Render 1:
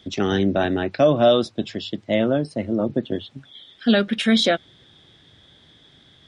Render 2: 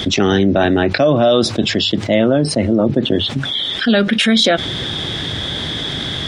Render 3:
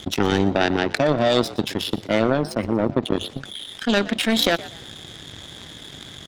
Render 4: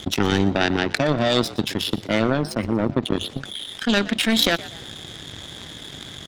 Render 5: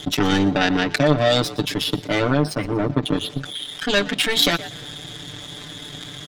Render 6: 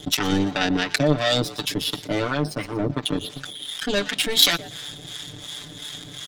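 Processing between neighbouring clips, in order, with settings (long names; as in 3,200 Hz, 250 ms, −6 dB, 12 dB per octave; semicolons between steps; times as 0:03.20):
envelope flattener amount 70%; level +1.5 dB
power curve on the samples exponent 2; echo with shifted repeats 120 ms, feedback 32%, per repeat +66 Hz, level −18 dB
dynamic equaliser 580 Hz, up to −5 dB, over −31 dBFS, Q 0.73; level +2 dB
comb filter 6.8 ms, depth 95%; level −1 dB
high-shelf EQ 3,600 Hz +8 dB; two-band tremolo in antiphase 2.8 Hz, depth 70%, crossover 740 Hz; level −1 dB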